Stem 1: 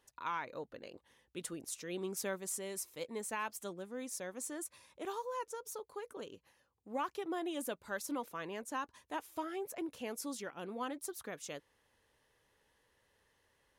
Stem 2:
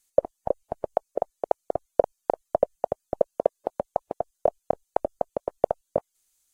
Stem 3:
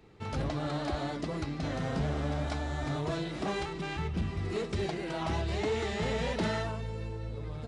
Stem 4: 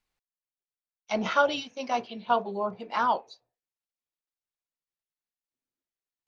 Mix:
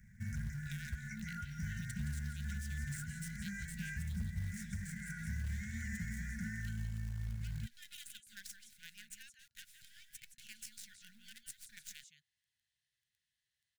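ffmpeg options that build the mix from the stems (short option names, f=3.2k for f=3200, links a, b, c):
-filter_complex "[0:a]equalizer=f=125:t=o:w=1:g=9,equalizer=f=500:t=o:w=1:g=-12,equalizer=f=1k:t=o:w=1:g=-6,equalizer=f=2k:t=o:w=1:g=8,equalizer=f=4k:t=o:w=1:g=12,equalizer=f=8k:t=o:w=1:g=12,acompressor=threshold=-37dB:ratio=2.5,adelay=450,volume=-11dB,asplit=2[a][b];[b]volume=-12dB[c];[1:a]acompressor=threshold=-24dB:ratio=8,adelay=1600,volume=-12dB[d];[2:a]equalizer=f=150:t=o:w=0.93:g=-3,volume=2.5dB[e];[3:a]acrossover=split=230|570[f][g][h];[f]acompressor=threshold=-50dB:ratio=4[i];[g]acompressor=threshold=-33dB:ratio=4[j];[h]acompressor=threshold=-31dB:ratio=4[k];[i][j][k]amix=inputs=3:normalize=0,volume=-1.5dB,asplit=2[l][m];[m]volume=-21.5dB[n];[a][d]amix=inputs=2:normalize=0,acrusher=bits=8:dc=4:mix=0:aa=0.000001,alimiter=level_in=9.5dB:limit=-24dB:level=0:latency=1:release=184,volume=-9.5dB,volume=0dB[o];[e][l]amix=inputs=2:normalize=0,asuperstop=centerf=3500:order=8:qfactor=0.93,alimiter=level_in=3dB:limit=-24dB:level=0:latency=1:release=496,volume=-3dB,volume=0dB[p];[c][n]amix=inputs=2:normalize=0,aecho=0:1:170:1[q];[o][p][q]amix=inputs=3:normalize=0,afftfilt=real='re*(1-between(b*sr/4096,230,1400))':imag='im*(1-between(b*sr/4096,230,1400))':win_size=4096:overlap=0.75,acrusher=bits=6:mode=log:mix=0:aa=0.000001,alimiter=level_in=7.5dB:limit=-24dB:level=0:latency=1:release=207,volume=-7.5dB"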